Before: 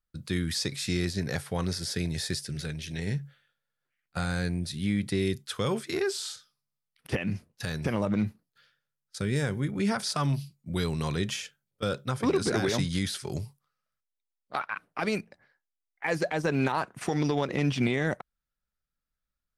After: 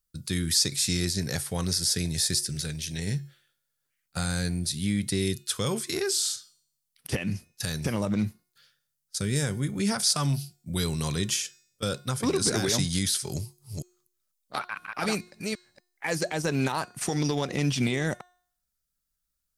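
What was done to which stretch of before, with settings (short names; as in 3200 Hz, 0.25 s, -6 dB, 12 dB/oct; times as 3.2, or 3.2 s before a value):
13.33–16.17 reverse delay 0.247 s, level -3 dB
whole clip: tone controls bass +3 dB, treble +14 dB; de-hum 359 Hz, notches 24; gain -1.5 dB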